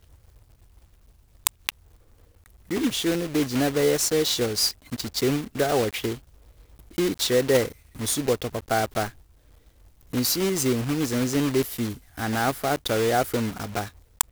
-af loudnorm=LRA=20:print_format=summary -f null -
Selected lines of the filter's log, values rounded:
Input Integrated:    -25.2 LUFS
Input True Peak:      -1.9 dBTP
Input LRA:             2.1 LU
Input Threshold:     -36.1 LUFS